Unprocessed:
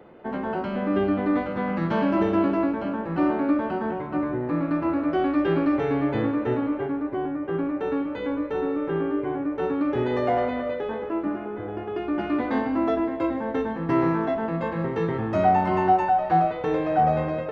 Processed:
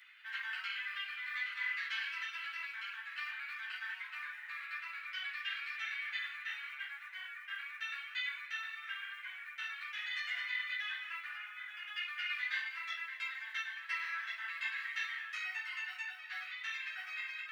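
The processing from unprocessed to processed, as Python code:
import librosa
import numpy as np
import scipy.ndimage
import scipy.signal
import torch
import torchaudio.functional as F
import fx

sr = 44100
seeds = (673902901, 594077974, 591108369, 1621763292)

y = fx.rider(x, sr, range_db=4, speed_s=0.5)
y = fx.quant_float(y, sr, bits=8)
y = scipy.signal.sosfilt(scipy.signal.butter(6, 1800.0, 'highpass', fs=sr, output='sos'), y)
y = fx.ensemble(y, sr)
y = y * 10.0 ** (7.0 / 20.0)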